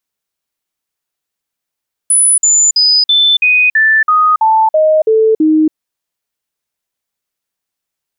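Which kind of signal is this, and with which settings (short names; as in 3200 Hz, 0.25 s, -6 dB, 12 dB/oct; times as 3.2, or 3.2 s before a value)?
stepped sine 9970 Hz down, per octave 2, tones 11, 0.28 s, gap 0.05 s -6 dBFS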